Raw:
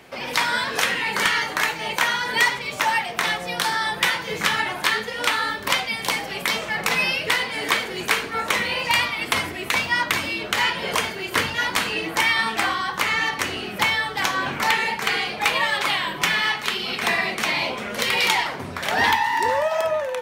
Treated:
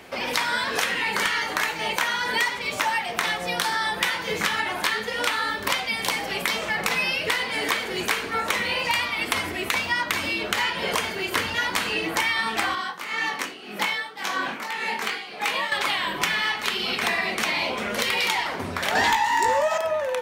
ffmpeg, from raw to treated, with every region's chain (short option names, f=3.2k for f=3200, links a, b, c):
-filter_complex "[0:a]asettb=1/sr,asplit=3[a][b][c];[a]atrim=end=12.754[d];[b]atrim=start=12.75:end=15.72,asetpts=PTS-STARTPTS,afade=t=in:d=0.004:c=qsin,afade=t=out:st=2.966:d=0.004:c=qsin,highpass=f=160:w=0.5412,highpass=f=160:w=1.3066,flanger=delay=19:depth=4.3:speed=2,tremolo=f=1.8:d=0.75[e];[c]atrim=start=15.716[f];[d][e]acrossfade=d=0.004:c1=hsin:c2=qsin[g];[g][f]acrossfade=d=0.004:c1=qsin:c2=hsin,asettb=1/sr,asplit=3[h][i][j];[h]atrim=end=18.954[k];[i]atrim=start=18.95:end=19.78,asetpts=PTS-STARTPTS,afade=t=in:d=0.004:c=qsin,afade=t=out:st=0.826:d=0.004:c=qsin,equalizer=f=7.1k:w=3.9:g=11.5,asplit=2[l][m];[m]adelay=18,volume=-5dB[n];[l][n]amix=inputs=2:normalize=0,atrim=end_sample=36603,acontrast=73[o];[j]atrim=start=19.776[p];[k][o]acrossfade=d=0.004:c1=hsin:c2=qsin[q];[q][p]acrossfade=d=0.004:c1=qsin:c2=hsin,equalizer=f=140:t=o:w=0.22:g=-10,acompressor=threshold=-25dB:ratio=3,volume=2.5dB"